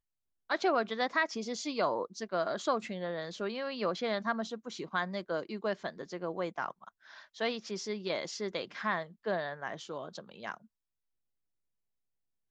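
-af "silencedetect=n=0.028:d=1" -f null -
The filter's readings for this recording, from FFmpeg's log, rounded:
silence_start: 10.54
silence_end: 12.50 | silence_duration: 1.96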